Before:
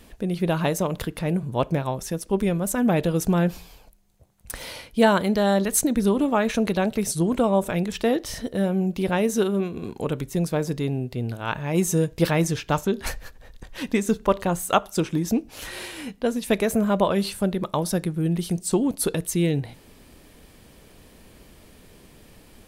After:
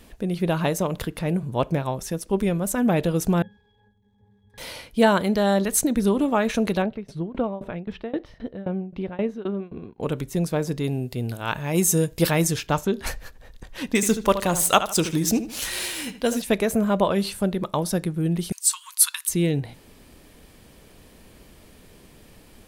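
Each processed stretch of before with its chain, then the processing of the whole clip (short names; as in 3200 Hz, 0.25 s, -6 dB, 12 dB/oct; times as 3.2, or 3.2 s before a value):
3.42–4.58 zero-crossing step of -38.5 dBFS + octave resonator G#, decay 0.37 s
6.82–10.03 tremolo saw down 3.8 Hz, depth 95% + air absorption 350 m
10.84–12.67 high shelf 5600 Hz +10.5 dB + notch 6000 Hz, Q 26
13.95–16.42 median filter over 3 samples + bell 13000 Hz +14.5 dB 2.6 oct + darkening echo 76 ms, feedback 33%, low-pass 3600 Hz, level -11 dB
18.52–19.29 brick-wall FIR high-pass 920 Hz + high shelf 3100 Hz +11 dB
whole clip: dry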